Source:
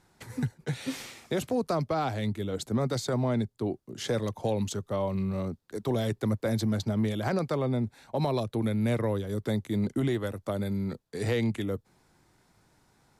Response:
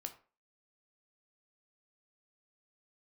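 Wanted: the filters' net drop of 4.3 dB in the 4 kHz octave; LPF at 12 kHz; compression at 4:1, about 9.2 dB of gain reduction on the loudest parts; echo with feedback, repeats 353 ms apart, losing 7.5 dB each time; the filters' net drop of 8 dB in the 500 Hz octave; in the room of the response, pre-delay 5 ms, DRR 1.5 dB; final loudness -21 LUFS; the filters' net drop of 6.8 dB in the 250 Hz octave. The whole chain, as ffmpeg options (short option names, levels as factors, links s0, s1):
-filter_complex "[0:a]lowpass=12000,equalizer=f=250:t=o:g=-7,equalizer=f=500:t=o:g=-8,equalizer=f=4000:t=o:g=-5,acompressor=threshold=0.0112:ratio=4,aecho=1:1:353|706|1059|1412|1765:0.422|0.177|0.0744|0.0312|0.0131,asplit=2[s0][s1];[1:a]atrim=start_sample=2205,adelay=5[s2];[s1][s2]afir=irnorm=-1:irlink=0,volume=1.19[s3];[s0][s3]amix=inputs=2:normalize=0,volume=8.91"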